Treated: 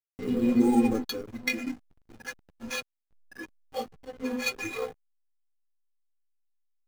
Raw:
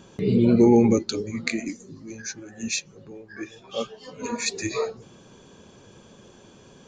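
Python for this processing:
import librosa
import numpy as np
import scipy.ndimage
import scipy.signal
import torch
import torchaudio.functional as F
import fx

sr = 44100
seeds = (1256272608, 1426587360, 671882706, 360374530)

p1 = fx.notch(x, sr, hz=470.0, q=12.0)
p2 = p1 + 0.56 * np.pad(p1, (int(2.5 * sr / 1000.0), 0))[:len(p1)]
p3 = fx.sample_hold(p2, sr, seeds[0], rate_hz=7700.0, jitter_pct=0)
p4 = p2 + (p3 * 10.0 ** (-3.0 / 20.0))
p5 = fx.hum_notches(p4, sr, base_hz=60, count=8)
p6 = fx.stiff_resonator(p5, sr, f0_hz=250.0, decay_s=0.21, stiffness=0.008)
p7 = fx.backlash(p6, sr, play_db=-39.5)
y = p7 * 10.0 ** (6.5 / 20.0)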